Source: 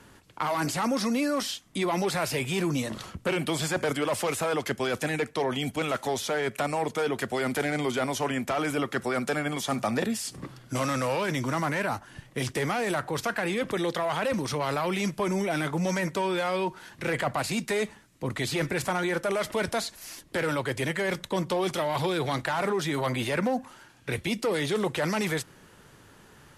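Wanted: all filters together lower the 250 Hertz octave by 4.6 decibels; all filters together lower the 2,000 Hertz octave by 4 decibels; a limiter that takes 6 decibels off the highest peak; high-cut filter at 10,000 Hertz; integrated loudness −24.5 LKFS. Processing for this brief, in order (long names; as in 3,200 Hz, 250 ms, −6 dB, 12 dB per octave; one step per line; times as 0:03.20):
low-pass filter 10,000 Hz
parametric band 250 Hz −6.5 dB
parametric band 2,000 Hz −5 dB
level +8.5 dB
brickwall limiter −15 dBFS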